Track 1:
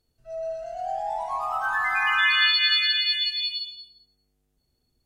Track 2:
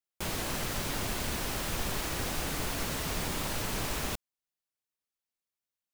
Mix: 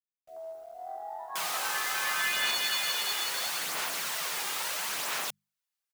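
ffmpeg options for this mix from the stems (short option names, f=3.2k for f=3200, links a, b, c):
-filter_complex "[0:a]afwtdn=0.0316,equalizer=f=140:w=5.8:g=-12.5,acrusher=bits=8:mix=0:aa=0.000001,volume=-10.5dB[a];[1:a]highpass=910,aphaser=in_gain=1:out_gain=1:delay=2.5:decay=0.33:speed=0.75:type=sinusoidal,adelay=1150,volume=3dB[b];[a][b]amix=inputs=2:normalize=0,equalizer=f=160:w=2.1:g=10.5,bandreject=f=50:t=h:w=6,bandreject=f=100:t=h:w=6,bandreject=f=150:t=h:w=6,bandreject=f=200:t=h:w=6"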